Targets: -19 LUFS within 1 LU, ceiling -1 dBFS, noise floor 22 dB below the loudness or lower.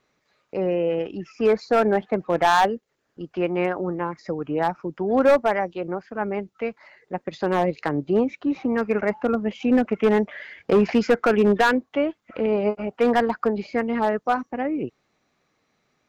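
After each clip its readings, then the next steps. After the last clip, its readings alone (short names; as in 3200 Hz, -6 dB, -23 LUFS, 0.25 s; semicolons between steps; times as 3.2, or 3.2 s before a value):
clipped 0.8%; flat tops at -11.5 dBFS; loudness -23.0 LUFS; peak -11.5 dBFS; loudness target -19.0 LUFS
-> clip repair -11.5 dBFS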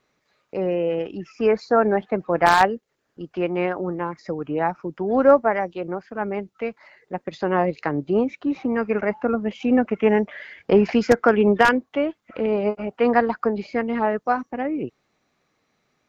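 clipped 0.0%; loudness -22.0 LUFS; peak -2.5 dBFS; loudness target -19.0 LUFS
-> gain +3 dB; limiter -1 dBFS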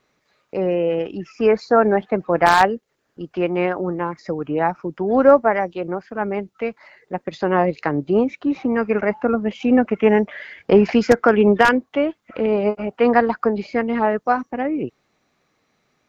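loudness -19.5 LUFS; peak -1.0 dBFS; noise floor -69 dBFS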